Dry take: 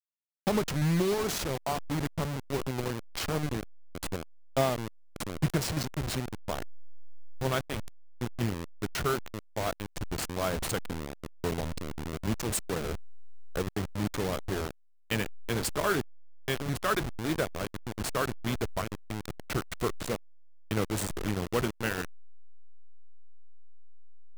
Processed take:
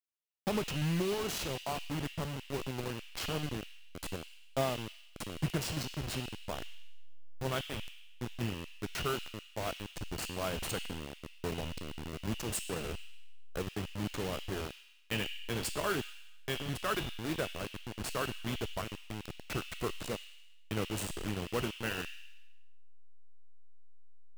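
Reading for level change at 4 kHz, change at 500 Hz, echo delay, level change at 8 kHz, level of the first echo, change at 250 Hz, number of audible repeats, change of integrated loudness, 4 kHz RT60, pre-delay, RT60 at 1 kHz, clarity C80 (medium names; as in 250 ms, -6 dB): -1.0 dB, -5.5 dB, no echo, -4.5 dB, no echo, -5.5 dB, no echo, -5.0 dB, 1.0 s, 7 ms, 1.0 s, 7.5 dB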